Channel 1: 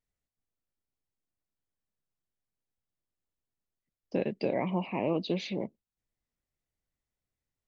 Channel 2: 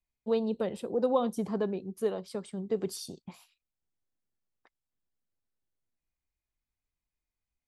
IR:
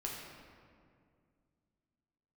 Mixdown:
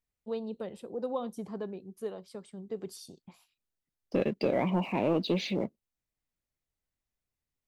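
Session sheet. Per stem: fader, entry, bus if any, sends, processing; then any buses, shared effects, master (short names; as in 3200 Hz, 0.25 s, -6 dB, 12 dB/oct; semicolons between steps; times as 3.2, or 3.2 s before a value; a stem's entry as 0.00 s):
-0.5 dB, 0.00 s, no send, sample leveller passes 1
-7.0 dB, 0.00 s, no send, dry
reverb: off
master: dry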